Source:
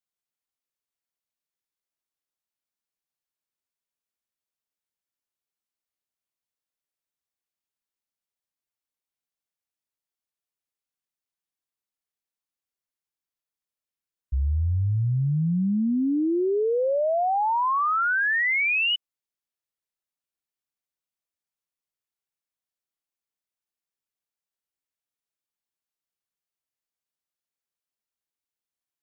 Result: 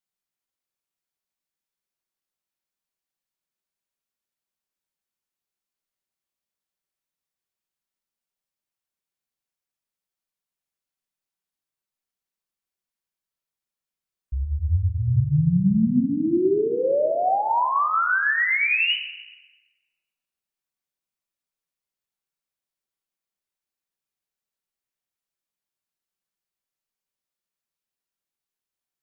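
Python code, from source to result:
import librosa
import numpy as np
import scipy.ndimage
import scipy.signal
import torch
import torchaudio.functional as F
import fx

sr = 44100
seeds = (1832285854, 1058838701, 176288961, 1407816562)

y = fx.room_shoebox(x, sr, seeds[0], volume_m3=1200.0, walls='mixed', distance_m=1.1)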